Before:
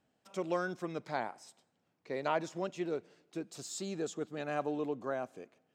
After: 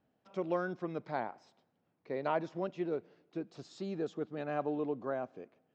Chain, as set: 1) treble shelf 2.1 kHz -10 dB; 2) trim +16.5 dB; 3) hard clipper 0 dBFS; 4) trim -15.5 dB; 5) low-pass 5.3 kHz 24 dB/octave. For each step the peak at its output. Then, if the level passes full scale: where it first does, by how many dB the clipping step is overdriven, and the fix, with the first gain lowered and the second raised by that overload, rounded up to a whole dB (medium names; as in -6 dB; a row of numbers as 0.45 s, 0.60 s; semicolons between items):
-20.5 dBFS, -4.0 dBFS, -4.0 dBFS, -19.5 dBFS, -19.5 dBFS; nothing clips